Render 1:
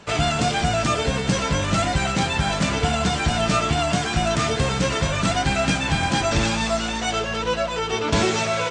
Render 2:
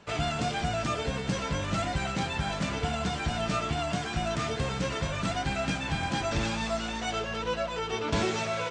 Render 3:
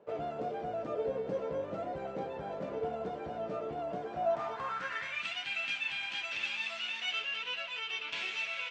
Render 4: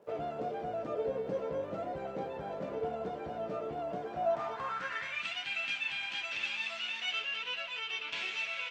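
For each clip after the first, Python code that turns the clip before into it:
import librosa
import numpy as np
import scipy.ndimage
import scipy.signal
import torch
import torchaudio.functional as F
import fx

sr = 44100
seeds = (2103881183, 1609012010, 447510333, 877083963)

y1 = fx.high_shelf(x, sr, hz=7700.0, db=-8.0)
y1 = fx.rider(y1, sr, range_db=10, speed_s=2.0)
y1 = y1 * librosa.db_to_amplitude(-8.5)
y2 = fx.rider(y1, sr, range_db=10, speed_s=0.5)
y2 = fx.filter_sweep_bandpass(y2, sr, from_hz=490.0, to_hz=2700.0, start_s=4.06, end_s=5.27, q=3.6)
y2 = y2 * librosa.db_to_amplitude(4.5)
y3 = fx.dmg_crackle(y2, sr, seeds[0], per_s=430.0, level_db=-66.0)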